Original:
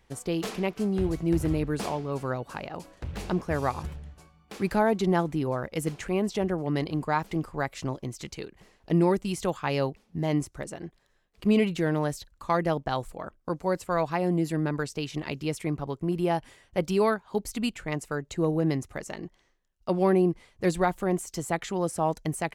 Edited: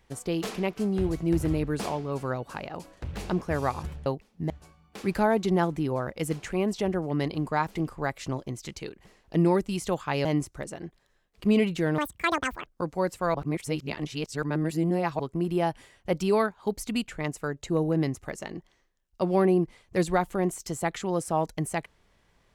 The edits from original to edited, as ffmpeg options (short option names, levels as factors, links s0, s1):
-filter_complex "[0:a]asplit=8[s0][s1][s2][s3][s4][s5][s6][s7];[s0]atrim=end=4.062[s8];[s1]atrim=start=9.808:end=10.252[s9];[s2]atrim=start=4.058:end=9.812[s10];[s3]atrim=start=10.248:end=11.984[s11];[s4]atrim=start=11.98:end=13.34,asetpts=PTS-STARTPTS,asetrate=87759,aresample=44100[s12];[s5]atrim=start=13.336:end=14.022[s13];[s6]atrim=start=14.018:end=15.872,asetpts=PTS-STARTPTS,areverse[s14];[s7]atrim=start=15.868[s15];[s8][s9]acrossfade=d=0.004:c1=hsin:c2=hsin[s16];[s16][s10]acrossfade=d=0.004:c1=hsin:c2=hsin[s17];[s17][s11]acrossfade=d=0.004:c1=hsin:c2=hsin[s18];[s18][s12]acrossfade=d=0.004:c1=hsin:c2=hsin[s19];[s19][s13]acrossfade=d=0.004:c1=hsin:c2=hsin[s20];[s20][s14]acrossfade=d=0.004:c1=hsin:c2=hsin[s21];[s21][s15]acrossfade=d=0.004:c1=hsin:c2=hsin"